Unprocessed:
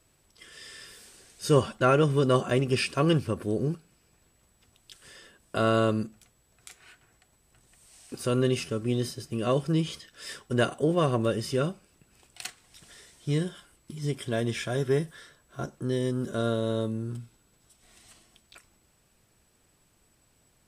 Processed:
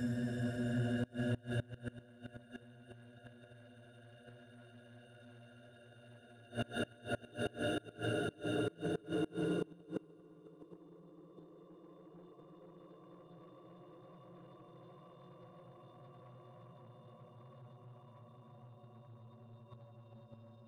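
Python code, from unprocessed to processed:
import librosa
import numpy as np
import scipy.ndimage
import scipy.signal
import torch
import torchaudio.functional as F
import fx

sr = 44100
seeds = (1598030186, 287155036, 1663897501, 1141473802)

y = fx.bin_expand(x, sr, power=3.0)
y = fx.peak_eq(y, sr, hz=100.0, db=11.0, octaves=0.45)
y = fx.level_steps(y, sr, step_db=22)
y = fx.paulstretch(y, sr, seeds[0], factor=26.0, window_s=0.5, from_s=10.43)
y = fx.leveller(y, sr, passes=2)
y = fx.hum_notches(y, sr, base_hz=50, count=3)
y = fx.gate_flip(y, sr, shuts_db=-35.0, range_db=-26)
y = y * librosa.db_to_amplitude(8.0)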